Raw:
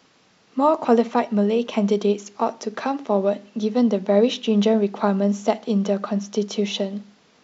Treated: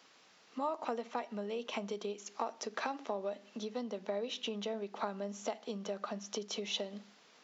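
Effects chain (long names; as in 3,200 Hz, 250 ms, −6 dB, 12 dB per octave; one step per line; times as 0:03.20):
downward compressor 5 to 1, threshold −27 dBFS, peak gain reduction 14.5 dB
high-pass filter 640 Hz 6 dB per octave
level −3.5 dB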